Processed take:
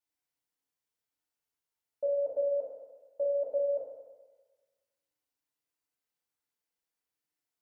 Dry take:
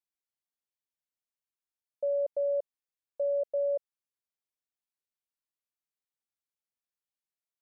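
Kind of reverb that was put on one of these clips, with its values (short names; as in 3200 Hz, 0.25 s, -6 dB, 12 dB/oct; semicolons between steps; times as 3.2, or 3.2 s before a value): FDN reverb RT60 1.3 s, low-frequency decay 0.8×, high-frequency decay 0.55×, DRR -6.5 dB; gain -2.5 dB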